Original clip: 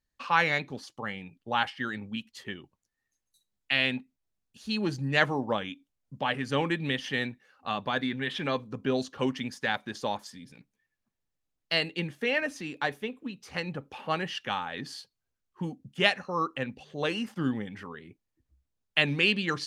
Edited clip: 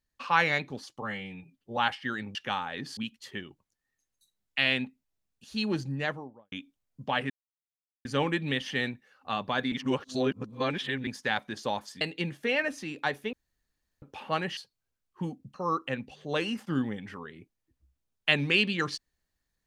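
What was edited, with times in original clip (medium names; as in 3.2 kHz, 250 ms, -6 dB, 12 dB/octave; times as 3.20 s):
1.02–1.52 s: stretch 1.5×
4.78–5.65 s: studio fade out
6.43 s: insert silence 0.75 s
8.10–9.45 s: reverse
10.39–11.79 s: delete
13.11–13.80 s: room tone
14.35–14.97 s: move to 2.10 s
15.94–16.23 s: delete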